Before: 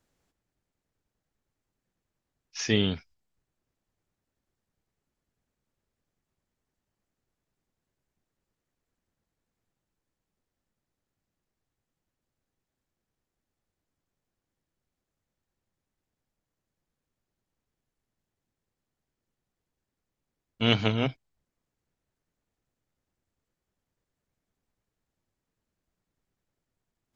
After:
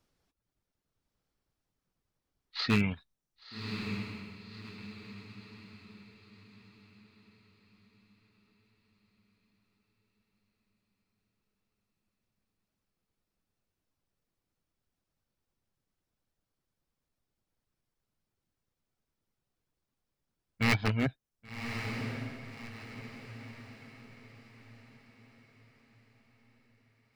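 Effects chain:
reverb reduction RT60 0.64 s
wave folding −17 dBFS
formants moved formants −5 semitones
on a send: feedback delay with all-pass diffusion 1,121 ms, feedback 42%, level −7 dB

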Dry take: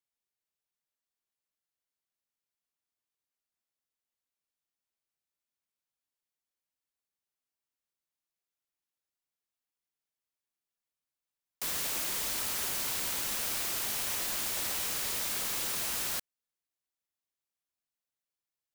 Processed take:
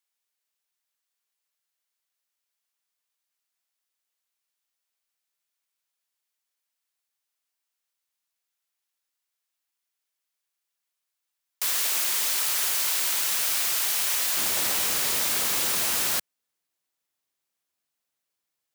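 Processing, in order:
high-pass filter 1,100 Hz 6 dB per octave, from 0:14.37 130 Hz
level +8.5 dB

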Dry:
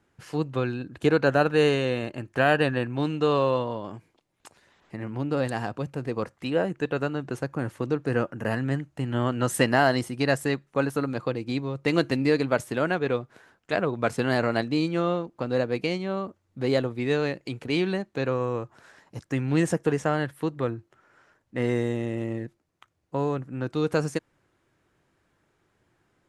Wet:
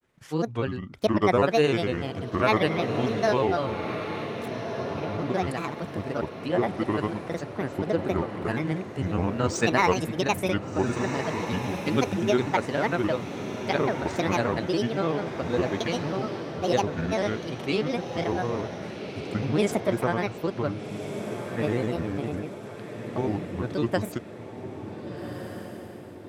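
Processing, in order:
granular cloud, spray 34 ms, pitch spread up and down by 7 semitones
feedback delay with all-pass diffusion 1,522 ms, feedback 49%, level −8 dB

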